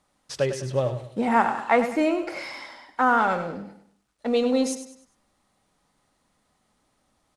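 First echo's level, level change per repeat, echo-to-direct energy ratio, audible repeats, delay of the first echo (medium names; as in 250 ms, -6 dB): -10.5 dB, -8.5 dB, -10.0 dB, 3, 100 ms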